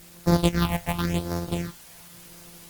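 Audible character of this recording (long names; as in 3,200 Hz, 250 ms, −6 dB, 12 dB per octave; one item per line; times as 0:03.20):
a buzz of ramps at a fixed pitch in blocks of 256 samples
phaser sweep stages 6, 0.92 Hz, lowest notch 320–2,800 Hz
a quantiser's noise floor 8 bits, dither triangular
Opus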